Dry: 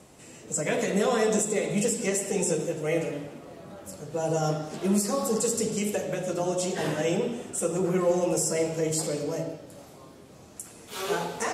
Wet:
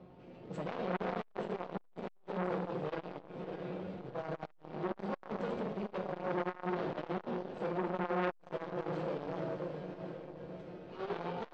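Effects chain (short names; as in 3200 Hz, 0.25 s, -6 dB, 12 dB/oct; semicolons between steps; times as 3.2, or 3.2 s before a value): median filter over 25 samples; hard clip -24 dBFS, distortion -13 dB; resonator 130 Hz, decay 0.52 s, harmonics all, mix 60%; diffused feedback echo 0.632 s, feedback 56%, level -11 dB; limiter -31.5 dBFS, peak gain reduction 6 dB; LPF 4200 Hz 24 dB/oct; resonator 180 Hz, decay 0.31 s, harmonics all, mix 80%; de-hum 53.44 Hz, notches 3; on a send at -14 dB: reverb RT60 2.4 s, pre-delay 77 ms; on the sum: core saturation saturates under 1300 Hz; gain +15 dB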